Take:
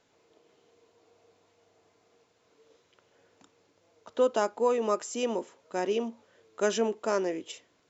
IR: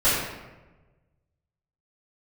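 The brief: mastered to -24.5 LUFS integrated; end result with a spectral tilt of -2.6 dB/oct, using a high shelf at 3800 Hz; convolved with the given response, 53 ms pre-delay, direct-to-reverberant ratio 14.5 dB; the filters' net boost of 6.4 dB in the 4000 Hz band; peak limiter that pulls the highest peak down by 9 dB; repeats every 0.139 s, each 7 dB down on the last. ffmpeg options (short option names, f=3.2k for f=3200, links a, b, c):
-filter_complex "[0:a]highshelf=f=3.8k:g=3,equalizer=f=4k:t=o:g=7.5,alimiter=limit=-22dB:level=0:latency=1,aecho=1:1:139|278|417|556|695:0.447|0.201|0.0905|0.0407|0.0183,asplit=2[a][b];[1:a]atrim=start_sample=2205,adelay=53[c];[b][c]afir=irnorm=-1:irlink=0,volume=-32dB[d];[a][d]amix=inputs=2:normalize=0,volume=7.5dB"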